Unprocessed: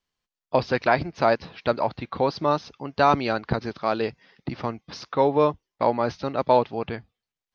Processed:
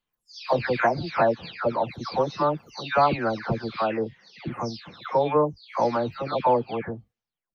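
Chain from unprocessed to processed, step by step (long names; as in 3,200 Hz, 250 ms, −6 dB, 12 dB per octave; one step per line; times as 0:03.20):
every frequency bin delayed by itself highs early, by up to 415 ms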